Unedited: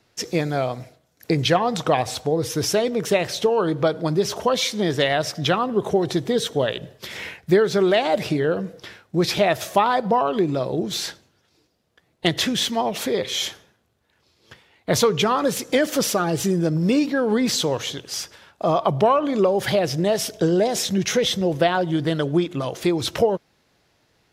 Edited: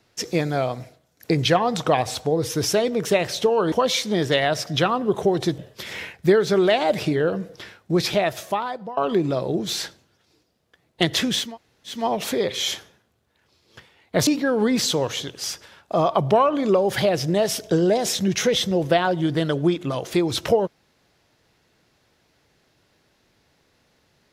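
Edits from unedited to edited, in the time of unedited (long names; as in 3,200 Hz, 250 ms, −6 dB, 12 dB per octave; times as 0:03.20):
0:03.72–0:04.40: remove
0:06.26–0:06.82: remove
0:09.18–0:10.21: fade out linear, to −18.5 dB
0:12.70: splice in room tone 0.50 s, crossfade 0.24 s
0:15.01–0:16.97: remove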